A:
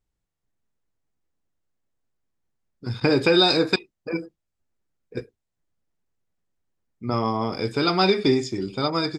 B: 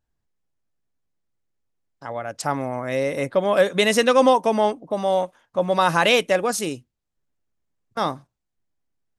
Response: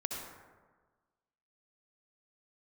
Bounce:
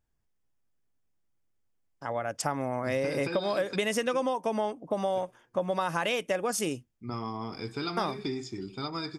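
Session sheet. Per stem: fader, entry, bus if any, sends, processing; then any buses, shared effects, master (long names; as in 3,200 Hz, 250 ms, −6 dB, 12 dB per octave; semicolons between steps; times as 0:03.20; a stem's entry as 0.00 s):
−9.5 dB, 0.00 s, send −23 dB, parametric band 550 Hz −11.5 dB 0.34 octaves; downward compressor, threshold −20 dBFS, peak gain reduction 6.5 dB
−1.5 dB, 0.00 s, no send, notch filter 4,000 Hz, Q 6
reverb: on, RT60 1.4 s, pre-delay 57 ms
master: downward compressor 10 to 1, threshold −25 dBFS, peak gain reduction 13 dB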